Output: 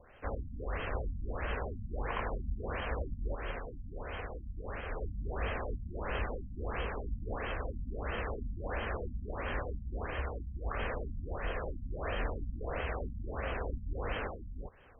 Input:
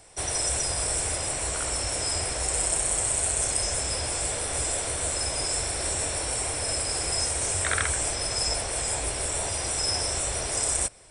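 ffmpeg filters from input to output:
-af "equalizer=f=440:w=1.8:g=-9.5,alimiter=limit=0.133:level=0:latency=1:release=222,asetrate=32667,aresample=44100,afftfilt=real='re*lt(b*sr/1024,250*pow(3300/250,0.5+0.5*sin(2*PI*1.5*pts/sr)))':imag='im*lt(b*sr/1024,250*pow(3300/250,0.5+0.5*sin(2*PI*1.5*pts/sr)))':win_size=1024:overlap=0.75"

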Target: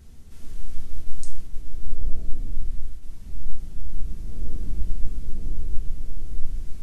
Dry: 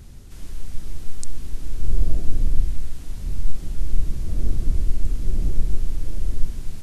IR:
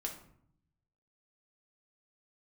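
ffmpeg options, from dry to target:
-filter_complex "[0:a]asplit=3[s0][s1][s2];[s0]afade=t=out:st=0.82:d=0.02[s3];[s1]agate=range=0.0224:threshold=0.126:ratio=3:detection=peak,afade=t=in:st=0.82:d=0.02,afade=t=out:st=3.01:d=0.02[s4];[s2]afade=t=in:st=3.01:d=0.02[s5];[s3][s4][s5]amix=inputs=3:normalize=0[s6];[1:a]atrim=start_sample=2205[s7];[s6][s7]afir=irnorm=-1:irlink=0,dynaudnorm=f=420:g=3:m=3.76,volume=0.562"

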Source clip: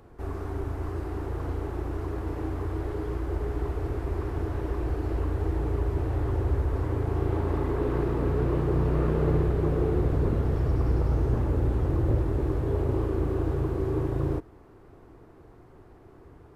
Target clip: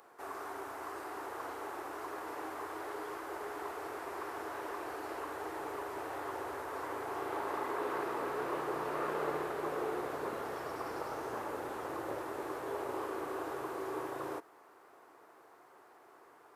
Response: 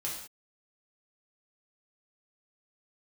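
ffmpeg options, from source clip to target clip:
-af "highpass=1000,equalizer=f=3000:t=o:w=2.4:g=-7,volume=2.24"

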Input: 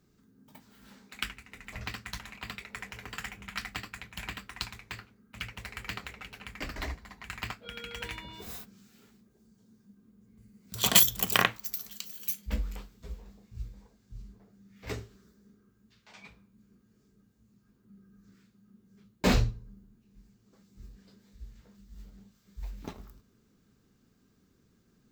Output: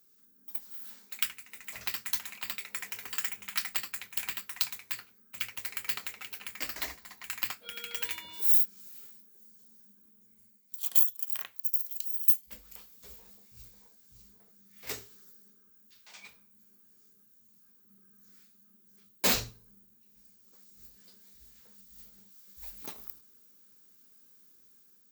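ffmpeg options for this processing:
-af "aemphasis=mode=production:type=riaa,dynaudnorm=f=180:g=5:m=1.5,volume=0.501"

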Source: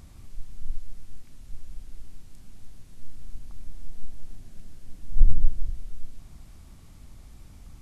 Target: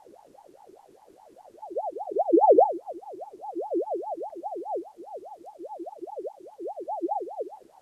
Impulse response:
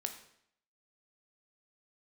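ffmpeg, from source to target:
-af "areverse,aeval=exprs='val(0)*sin(2*PI*600*n/s+600*0.45/4.9*sin(2*PI*4.9*n/s))':c=same,volume=0.562"

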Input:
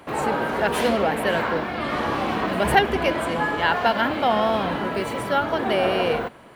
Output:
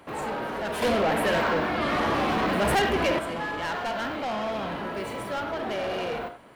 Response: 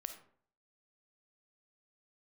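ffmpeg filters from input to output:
-filter_complex "[1:a]atrim=start_sample=2205,afade=t=out:st=0.16:d=0.01,atrim=end_sample=7497[s0];[0:a][s0]afir=irnorm=-1:irlink=0,asoftclip=type=tanh:threshold=0.0596,asettb=1/sr,asplit=3[s1][s2][s3];[s1]atrim=end=0.824[s4];[s2]atrim=start=0.82:end=3.19,asetpts=PTS-STARTPTS,afade=t=in:d=0.004:c=qsin,afade=t=out:st=2.366:d=0.004:c=qsin,acontrast=74[s5];[s3]atrim=start=3.186[s6];[s4][s5]acrossfade=d=0.004:c1=hsin:c2=qsin[s7];[s7][s6]acrossfade=d=0.004:c1=qsin:c2=hsin,volume=0.841"

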